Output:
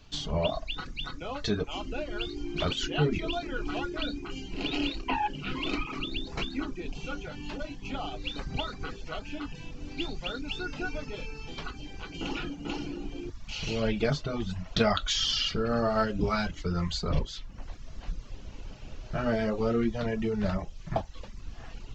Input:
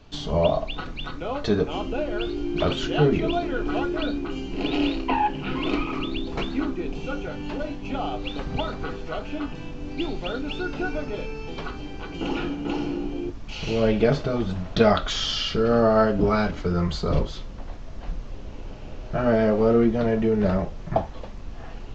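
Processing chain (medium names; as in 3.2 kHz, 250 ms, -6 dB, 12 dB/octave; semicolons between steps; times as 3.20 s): peaking EQ 480 Hz -5.5 dB 2.3 oct; reverb removal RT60 0.64 s; treble shelf 3.8 kHz +7.5 dB; trim -3 dB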